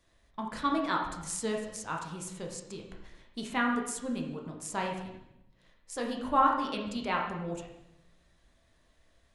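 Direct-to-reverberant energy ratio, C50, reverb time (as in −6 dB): 0.0 dB, 4.5 dB, 0.85 s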